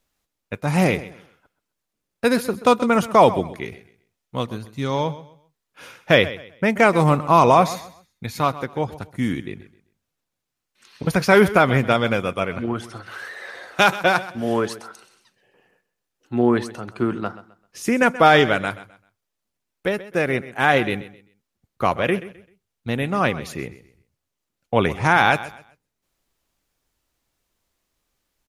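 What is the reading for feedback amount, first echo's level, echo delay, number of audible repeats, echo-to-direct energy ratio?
28%, -16.0 dB, 0.13 s, 2, -15.5 dB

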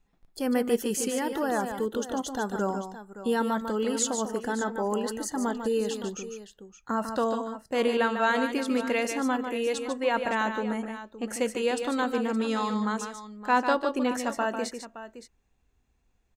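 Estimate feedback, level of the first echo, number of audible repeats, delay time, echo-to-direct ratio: no steady repeat, -7.5 dB, 2, 0.147 s, -6.5 dB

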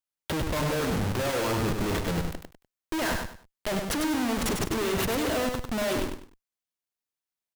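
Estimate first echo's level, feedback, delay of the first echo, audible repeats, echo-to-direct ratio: -5.0 dB, 26%, 99 ms, 3, -4.5 dB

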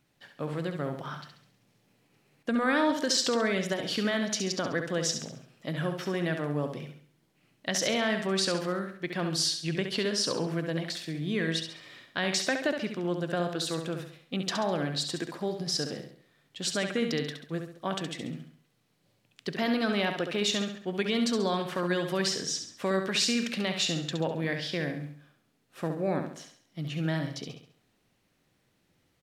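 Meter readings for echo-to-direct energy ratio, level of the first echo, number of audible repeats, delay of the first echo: -6.0 dB, -7.0 dB, 4, 68 ms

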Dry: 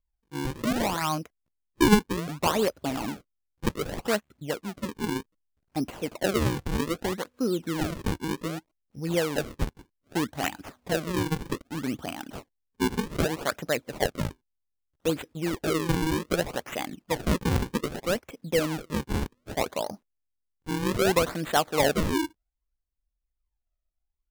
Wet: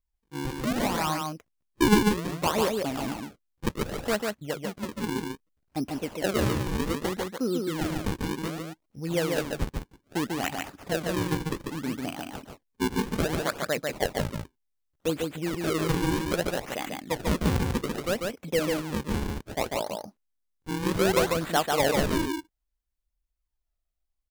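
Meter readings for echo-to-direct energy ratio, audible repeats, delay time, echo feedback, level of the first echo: -3.5 dB, 1, 0.144 s, no steady repeat, -3.5 dB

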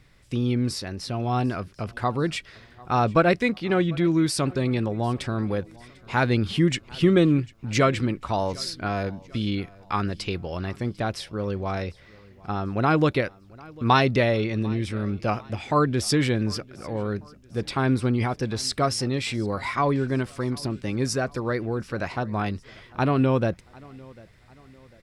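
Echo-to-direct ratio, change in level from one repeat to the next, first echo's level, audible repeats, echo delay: -22.5 dB, -7.0 dB, -23.5 dB, 2, 0.747 s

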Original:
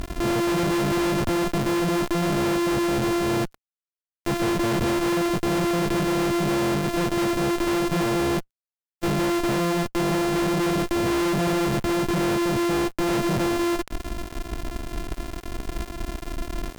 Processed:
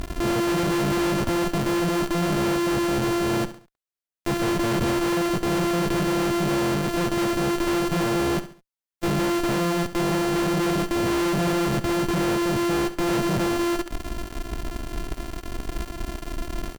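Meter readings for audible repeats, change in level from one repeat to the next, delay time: 3, -9.0 dB, 69 ms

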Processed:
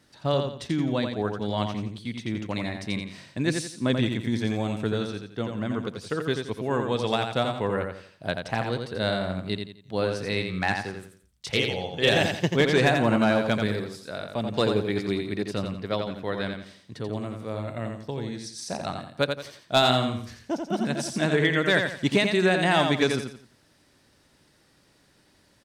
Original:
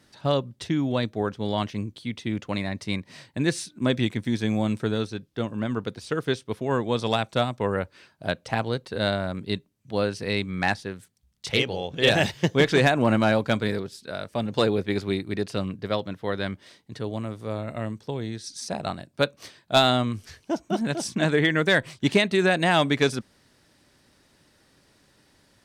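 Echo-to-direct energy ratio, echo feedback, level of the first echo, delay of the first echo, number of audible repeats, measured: -5.0 dB, 33%, -5.5 dB, 86 ms, 4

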